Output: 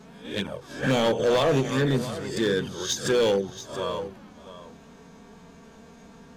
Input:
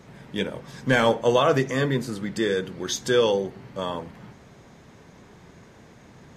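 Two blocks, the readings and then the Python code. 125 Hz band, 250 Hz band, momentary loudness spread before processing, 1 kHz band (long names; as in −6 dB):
0.0 dB, −0.5 dB, 13 LU, −3.5 dB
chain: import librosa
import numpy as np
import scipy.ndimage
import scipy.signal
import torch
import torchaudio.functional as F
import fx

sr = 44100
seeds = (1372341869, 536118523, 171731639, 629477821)

p1 = fx.spec_swells(x, sr, rise_s=0.48)
p2 = fx.peak_eq(p1, sr, hz=2000.0, db=-9.5, octaves=0.2)
p3 = fx.hum_notches(p2, sr, base_hz=60, count=2)
p4 = fx.level_steps(p3, sr, step_db=13)
p5 = p3 + F.gain(torch.from_numpy(p4), -2.0).numpy()
p6 = fx.env_flanger(p5, sr, rest_ms=4.9, full_db=-13.0)
p7 = np.clip(p6, -10.0 ** (-16.0 / 20.0), 10.0 ** (-16.0 / 20.0))
p8 = p7 + fx.echo_single(p7, sr, ms=680, db=-13.5, dry=0)
p9 = fx.end_taper(p8, sr, db_per_s=190.0)
y = F.gain(torch.from_numpy(p9), -1.5).numpy()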